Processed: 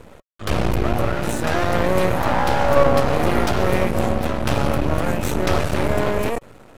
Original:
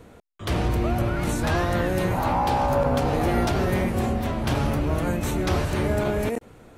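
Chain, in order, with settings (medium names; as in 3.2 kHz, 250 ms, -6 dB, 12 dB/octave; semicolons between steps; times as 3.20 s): 1.13–1.62 s: comb of notches 1.1 kHz; small resonant body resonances 560/1300/2500 Hz, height 7 dB, ringing for 55 ms; half-wave rectifier; trim +7 dB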